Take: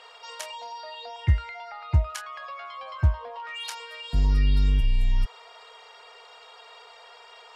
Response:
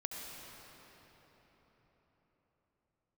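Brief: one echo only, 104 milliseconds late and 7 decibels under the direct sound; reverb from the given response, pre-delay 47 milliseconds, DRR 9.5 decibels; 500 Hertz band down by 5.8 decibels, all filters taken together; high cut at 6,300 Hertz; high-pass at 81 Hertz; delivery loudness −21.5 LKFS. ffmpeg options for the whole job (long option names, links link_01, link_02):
-filter_complex "[0:a]highpass=81,lowpass=6300,equalizer=frequency=500:width_type=o:gain=-8,aecho=1:1:104:0.447,asplit=2[link_01][link_02];[1:a]atrim=start_sample=2205,adelay=47[link_03];[link_02][link_03]afir=irnorm=-1:irlink=0,volume=-10dB[link_04];[link_01][link_04]amix=inputs=2:normalize=0,volume=10.5dB"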